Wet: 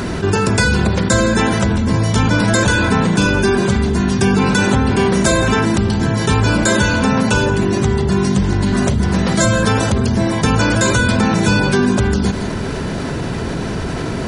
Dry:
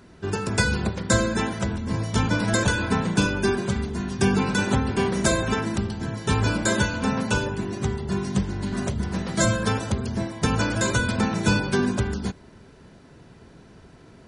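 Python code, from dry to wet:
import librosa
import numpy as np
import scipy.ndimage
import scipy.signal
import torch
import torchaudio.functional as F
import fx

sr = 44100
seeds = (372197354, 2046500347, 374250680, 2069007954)

y = x + 10.0 ** (-21.5 / 20.0) * np.pad(x, (int(165 * sr / 1000.0), 0))[:len(x)]
y = fx.env_flatten(y, sr, amount_pct=70)
y = F.gain(torch.from_numpy(y), 4.5).numpy()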